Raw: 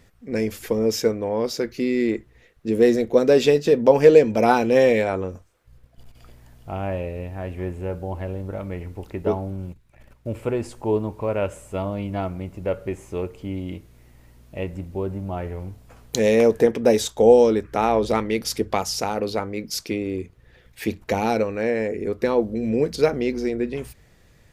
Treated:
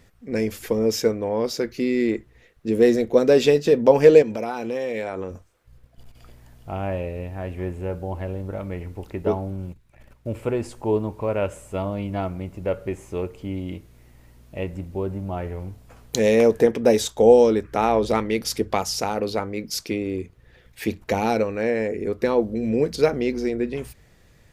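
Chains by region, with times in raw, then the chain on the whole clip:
0:04.22–0:05.31: low-shelf EQ 100 Hz −11.5 dB + downward compressor 5 to 1, threshold −24 dBFS
whole clip: no processing

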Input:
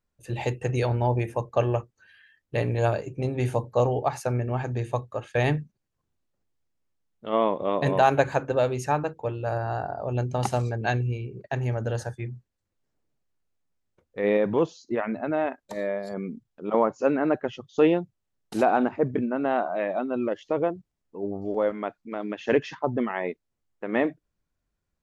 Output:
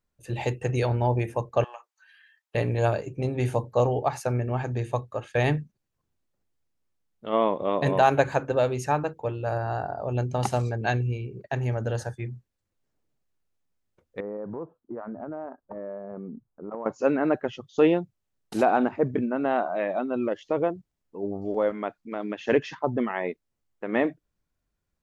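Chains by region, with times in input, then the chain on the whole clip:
0:01.64–0:02.55: Chebyshev high-pass filter 860 Hz, order 3 + downward compressor 2 to 1, threshold −42 dBFS
0:14.20–0:16.86: Butterworth low-pass 1,400 Hz + downward compressor 4 to 1, threshold −33 dBFS
whole clip: no processing

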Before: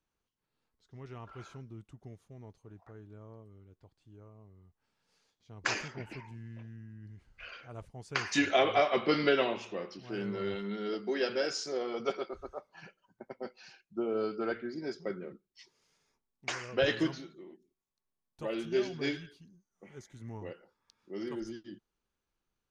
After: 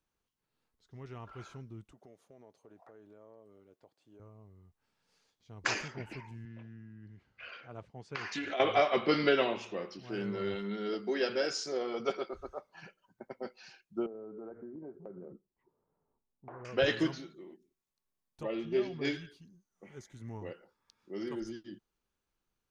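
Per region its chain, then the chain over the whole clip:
0:01.92–0:04.20: high-pass filter 250 Hz + parametric band 590 Hz +8 dB 0.85 octaves + downward compressor 3 to 1, threshold −53 dBFS
0:06.45–0:08.60: downward compressor, threshold −33 dBFS + band-pass filter 120–4,400 Hz + highs frequency-modulated by the lows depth 0.11 ms
0:14.06–0:16.65: low-pass filter 1,000 Hz 24 dB per octave + downward compressor 8 to 1, threshold −42 dBFS
0:18.43–0:19.05: Butterworth band-reject 1,500 Hz, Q 7.6 + high-frequency loss of the air 210 metres
whole clip: no processing

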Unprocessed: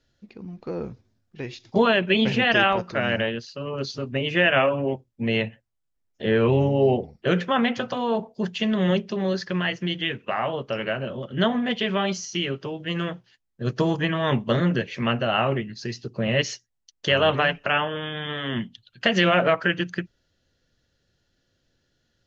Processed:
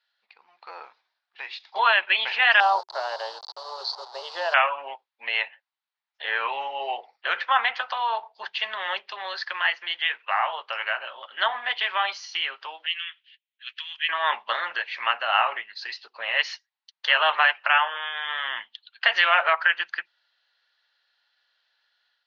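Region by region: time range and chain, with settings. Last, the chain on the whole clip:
0:02.60–0:04.54: hold until the input has moved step −32 dBFS + drawn EQ curve 120 Hz 0 dB, 250 Hz −19 dB, 380 Hz +7 dB, 950 Hz +2 dB, 2,400 Hz −27 dB, 4,500 Hz +8 dB, 7,000 Hz +1 dB
0:12.86–0:14.09: inverse Chebyshev high-pass filter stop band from 370 Hz, stop band 80 dB + high shelf with overshoot 3,800 Hz −6 dB, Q 3
whole clip: elliptic band-pass filter 850–4,300 Hz, stop band 70 dB; dynamic equaliser 3,300 Hz, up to −4 dB, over −40 dBFS, Q 1.4; automatic gain control gain up to 6 dB

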